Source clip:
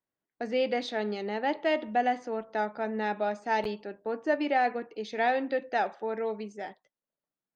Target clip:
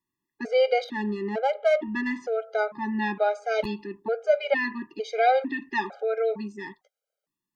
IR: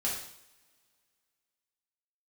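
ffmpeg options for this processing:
-filter_complex "[0:a]asettb=1/sr,asplit=3[link_01][link_02][link_03];[link_01]atrim=end=0.844[link_04];[link_02]atrim=start=0.84:end=2.11,asetpts=PTS-STARTPTS,afade=type=in:duration=0.004:curve=qsin,afade=type=out:start_time=1.266:duration=0.004:curve=qsin,adynamicsmooth=sensitivity=2:basefreq=2000[link_05];[link_03]atrim=start=2.106[link_06];[link_04][link_05]acrossfade=duration=0.004:curve1=hsin:curve2=qsin[link_07];[link_07][link_06]acrossfade=duration=0.004:curve1=qsin:curve2=hsin,afftfilt=real='re*gt(sin(2*PI*1.1*pts/sr)*(1-2*mod(floor(b*sr/1024/410),2)),0)':imag='im*gt(sin(2*PI*1.1*pts/sr)*(1-2*mod(floor(b*sr/1024/410),2)),0)':win_size=1024:overlap=0.75,volume=7dB"

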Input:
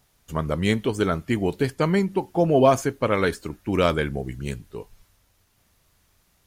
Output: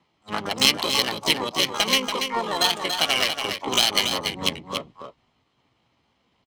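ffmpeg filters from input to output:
ffmpeg -i in.wav -filter_complex "[0:a]highpass=67,highshelf=frequency=11000:gain=-5,asplit=2[link_01][link_02];[link_02]acrusher=bits=5:mode=log:mix=0:aa=0.000001,volume=-9dB[link_03];[link_01][link_03]amix=inputs=2:normalize=0,acrossover=split=220 3200:gain=0.251 1 0.141[link_04][link_05][link_06];[link_04][link_05][link_06]amix=inputs=3:normalize=0,acrossover=split=2000[link_07][link_08];[link_07]acompressor=threshold=-27dB:ratio=12[link_09];[link_08]alimiter=level_in=1dB:limit=-24dB:level=0:latency=1:release=264,volume=-1dB[link_10];[link_09][link_10]amix=inputs=2:normalize=0,aexciter=amount=10.4:drive=3.2:freq=2100,asplit=3[link_11][link_12][link_13];[link_12]asetrate=35002,aresample=44100,atempo=1.25992,volume=-6dB[link_14];[link_13]asetrate=88200,aresample=44100,atempo=0.5,volume=-3dB[link_15];[link_11][link_14][link_15]amix=inputs=3:normalize=0,aecho=1:1:1.3:0.32,asetrate=58866,aresample=44100,atempo=0.749154,adynamicsmooth=sensitivity=1.5:basefreq=1200,aecho=1:1:284:0.447,volume=1.5dB" out.wav

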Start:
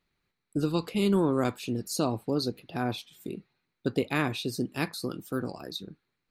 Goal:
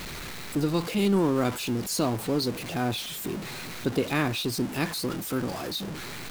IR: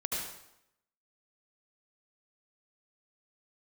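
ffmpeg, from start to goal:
-af "aeval=exprs='val(0)+0.5*0.0282*sgn(val(0))':channel_layout=same"

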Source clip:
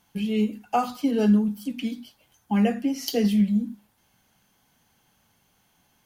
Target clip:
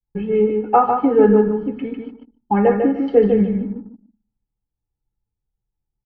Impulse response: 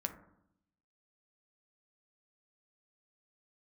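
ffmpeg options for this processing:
-filter_complex "[0:a]aecho=1:1:2.3:0.67,agate=range=-33dB:threshold=-57dB:ratio=3:detection=peak,aecho=1:1:149|298|447:0.562|0.135|0.0324,asplit=2[link_01][link_02];[1:a]atrim=start_sample=2205[link_03];[link_02][link_03]afir=irnorm=-1:irlink=0,volume=-6dB[link_04];[link_01][link_04]amix=inputs=2:normalize=0,anlmdn=0.0398,lowpass=frequency=1600:width=0.5412,lowpass=frequency=1600:width=1.3066,volume=6dB"

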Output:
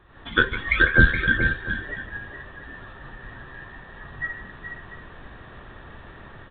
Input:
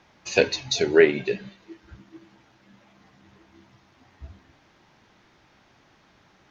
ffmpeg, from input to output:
ffmpeg -i in.wav -filter_complex "[0:a]afftfilt=real='real(if(between(b,1,1012),(2*floor((b-1)/92)+1)*92-b,b),0)':imag='imag(if(between(b,1,1012),(2*floor((b-1)/92)+1)*92-b,b),0)*if(between(b,1,1012),-1,1)':win_size=2048:overlap=0.75,aemphasis=mode=reproduction:type=riaa,dynaudnorm=framelen=120:gausssize=3:maxgain=14dB,asplit=2[link_01][link_02];[link_02]aecho=0:1:154|422|478|691:0.178|0.355|0.188|0.15[link_03];[link_01][link_03]amix=inputs=2:normalize=0,aresample=8000,aresample=44100,volume=-1dB" out.wav

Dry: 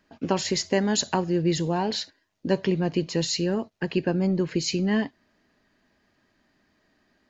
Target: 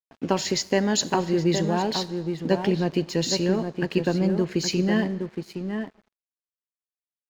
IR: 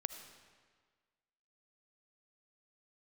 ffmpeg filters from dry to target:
-filter_complex "[0:a]asplit=2[link_01][link_02];[link_02]adelay=816.3,volume=-6dB,highshelf=frequency=4000:gain=-18.4[link_03];[link_01][link_03]amix=inputs=2:normalize=0,asplit=2[link_04][link_05];[1:a]atrim=start_sample=2205,lowshelf=frequency=72:gain=-11.5[link_06];[link_05][link_06]afir=irnorm=-1:irlink=0,volume=-6dB[link_07];[link_04][link_07]amix=inputs=2:normalize=0,aeval=exprs='sgn(val(0))*max(abs(val(0))-0.00596,0)':channel_layout=same,volume=-1.5dB"

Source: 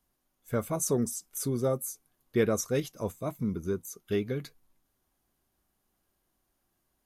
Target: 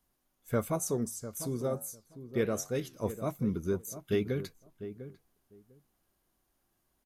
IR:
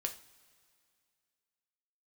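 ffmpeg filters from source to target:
-filter_complex "[0:a]asplit=3[link_01][link_02][link_03];[link_01]afade=type=out:start_time=0.77:duration=0.02[link_04];[link_02]flanger=delay=9.8:depth=9.6:regen=-83:speed=1.1:shape=sinusoidal,afade=type=in:start_time=0.77:duration=0.02,afade=type=out:start_time=3.02:duration=0.02[link_05];[link_03]afade=type=in:start_time=3.02:duration=0.02[link_06];[link_04][link_05][link_06]amix=inputs=3:normalize=0,asplit=2[link_07][link_08];[link_08]adelay=699,lowpass=frequency=940:poles=1,volume=-11.5dB,asplit=2[link_09][link_10];[link_10]adelay=699,lowpass=frequency=940:poles=1,volume=0.16[link_11];[link_07][link_09][link_11]amix=inputs=3:normalize=0"

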